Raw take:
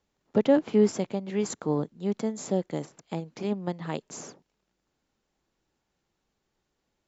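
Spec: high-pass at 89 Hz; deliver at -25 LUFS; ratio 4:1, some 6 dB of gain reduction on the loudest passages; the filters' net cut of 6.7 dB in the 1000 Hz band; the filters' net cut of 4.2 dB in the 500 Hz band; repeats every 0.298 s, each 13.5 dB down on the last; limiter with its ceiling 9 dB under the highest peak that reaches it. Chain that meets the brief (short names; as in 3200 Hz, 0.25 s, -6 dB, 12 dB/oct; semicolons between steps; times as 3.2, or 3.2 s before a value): HPF 89 Hz; bell 500 Hz -3.5 dB; bell 1000 Hz -7.5 dB; compressor 4:1, threshold -25 dBFS; limiter -25 dBFS; feedback echo 0.298 s, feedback 21%, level -13.5 dB; gain +11.5 dB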